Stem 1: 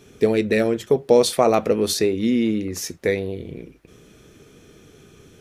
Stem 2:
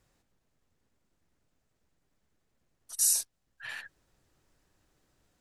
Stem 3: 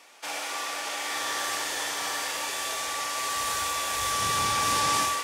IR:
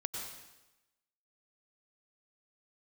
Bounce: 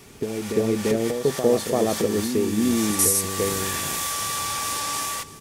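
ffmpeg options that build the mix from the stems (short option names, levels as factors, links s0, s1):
-filter_complex "[0:a]tiltshelf=f=830:g=7.5,volume=0.531,asplit=2[s0][s1];[s1]volume=0.708[s2];[1:a]alimiter=limit=0.119:level=0:latency=1,volume=1.33[s3];[2:a]volume=1.06,asplit=2[s4][s5];[s5]volume=0.075[s6];[s0][s4]amix=inputs=2:normalize=0,acompressor=threshold=0.0501:ratio=5,volume=1[s7];[s2][s6]amix=inputs=2:normalize=0,aecho=0:1:340:1[s8];[s3][s7][s8]amix=inputs=3:normalize=0,highshelf=f=8300:g=12"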